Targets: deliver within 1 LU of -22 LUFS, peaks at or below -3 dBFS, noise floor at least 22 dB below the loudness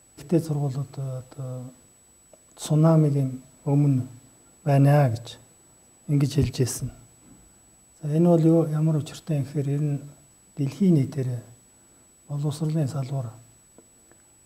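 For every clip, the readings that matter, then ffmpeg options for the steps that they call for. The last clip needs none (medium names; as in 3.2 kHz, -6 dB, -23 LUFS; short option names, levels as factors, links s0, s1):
steady tone 7.9 kHz; tone level -55 dBFS; loudness -24.0 LUFS; peak level -8.0 dBFS; loudness target -22.0 LUFS
-> -af "bandreject=f=7900:w=30"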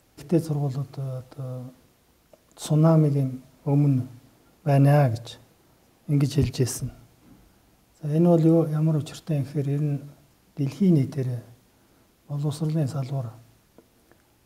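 steady tone not found; loudness -24.0 LUFS; peak level -8.0 dBFS; loudness target -22.0 LUFS
-> -af "volume=1.26"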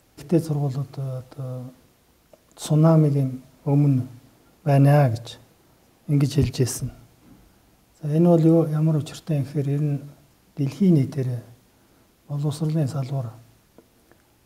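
loudness -22.0 LUFS; peak level -6.0 dBFS; noise floor -60 dBFS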